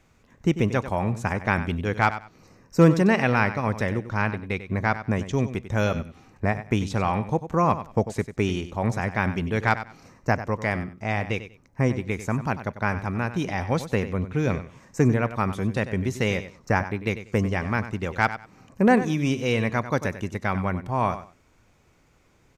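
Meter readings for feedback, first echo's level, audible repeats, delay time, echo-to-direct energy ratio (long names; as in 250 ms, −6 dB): 20%, −12.5 dB, 2, 95 ms, −12.5 dB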